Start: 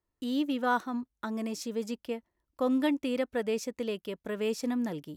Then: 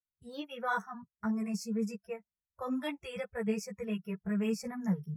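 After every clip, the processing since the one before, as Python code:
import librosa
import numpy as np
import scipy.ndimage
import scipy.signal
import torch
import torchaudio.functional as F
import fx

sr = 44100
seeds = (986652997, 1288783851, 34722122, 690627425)

y = fx.noise_reduce_blind(x, sr, reduce_db=26)
y = fx.low_shelf_res(y, sr, hz=230.0, db=8.0, q=3.0)
y = fx.ensemble(y, sr)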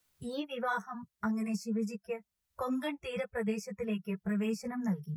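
y = fx.band_squash(x, sr, depth_pct=70)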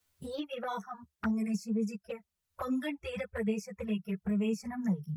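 y = fx.peak_eq(x, sr, hz=77.0, db=11.0, octaves=0.31)
y = fx.env_flanger(y, sr, rest_ms=11.0, full_db=-29.5)
y = F.gain(torch.from_numpy(y), 2.0).numpy()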